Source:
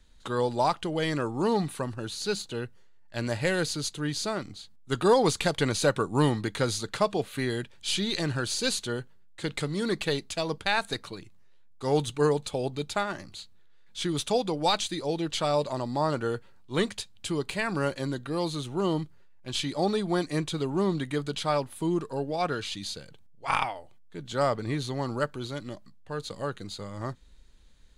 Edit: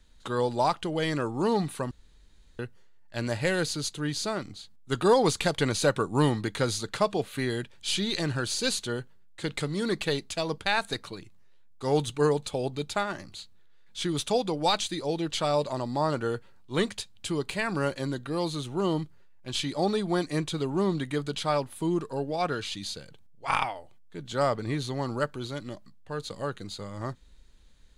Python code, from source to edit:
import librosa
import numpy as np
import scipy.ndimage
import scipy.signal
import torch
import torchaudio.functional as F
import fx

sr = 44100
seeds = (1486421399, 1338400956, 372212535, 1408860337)

y = fx.edit(x, sr, fx.room_tone_fill(start_s=1.91, length_s=0.68), tone=tone)